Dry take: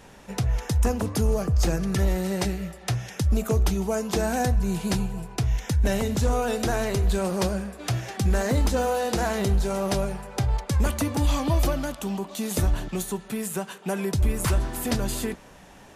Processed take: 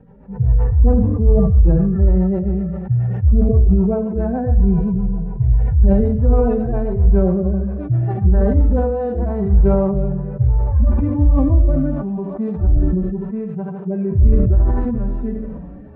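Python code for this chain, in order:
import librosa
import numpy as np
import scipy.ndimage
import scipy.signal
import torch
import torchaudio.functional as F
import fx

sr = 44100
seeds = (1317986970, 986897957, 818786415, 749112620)

y = fx.hpss_only(x, sr, part='harmonic')
y = fx.highpass(y, sr, hz=140.0, slope=6)
y = fx.tilt_eq(y, sr, slope=-4.5)
y = fx.echo_feedback(y, sr, ms=75, feedback_pct=44, wet_db=-10.0)
y = fx.rotary_switch(y, sr, hz=7.5, then_hz=0.75, switch_at_s=8.47)
y = scipy.signal.sosfilt(scipy.signal.butter(2, 1400.0, 'lowpass', fs=sr, output='sos'), y)
y = fx.sustainer(y, sr, db_per_s=30.0)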